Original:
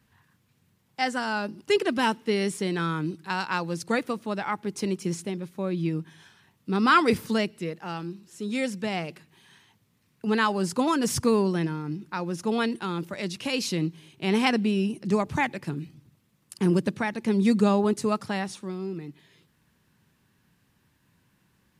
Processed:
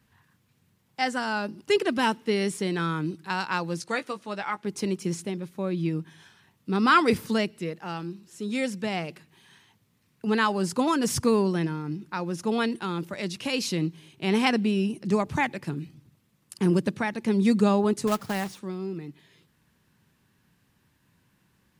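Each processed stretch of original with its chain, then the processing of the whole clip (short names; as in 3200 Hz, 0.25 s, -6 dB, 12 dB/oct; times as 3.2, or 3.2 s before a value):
3.8–4.65 LPF 10000 Hz + low shelf 410 Hz -10 dB + doubler 15 ms -9.5 dB
18.07–18.59 HPF 53 Hz + high shelf 4200 Hz -8.5 dB + companded quantiser 4-bit
whole clip: dry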